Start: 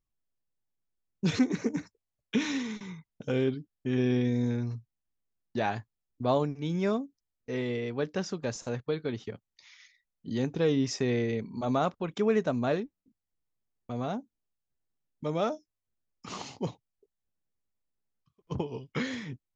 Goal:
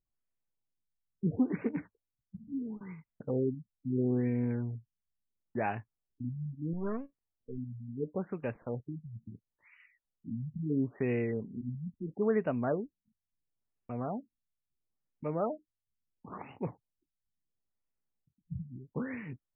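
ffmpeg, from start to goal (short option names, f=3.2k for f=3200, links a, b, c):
-filter_complex "[0:a]asettb=1/sr,asplit=3[a][b][c];[a]atrim=end=6.734[d];[b]atrim=start=6.73:end=7.58,asetpts=PTS-STARTPTS,afade=t=in:d=0.004:c=qsin,afade=t=out:st=0.846:d=0.004:c=qsin,aeval=exprs='if(lt(val(0),0),0.251*val(0),val(0))':c=same[e];[c]atrim=start=7.576[f];[d][e]acrossfade=d=0.004:c1=hsin:c2=qsin[g];[g][f]acrossfade=d=0.004:c1=qsin:c2=hsin,afftfilt=real='re*lt(b*sr/1024,210*pow(3000/210,0.5+0.5*sin(2*PI*0.74*pts/sr)))':imag='im*lt(b*sr/1024,210*pow(3000/210,0.5+0.5*sin(2*PI*0.74*pts/sr)))':win_size=1024:overlap=0.75,volume=-3dB"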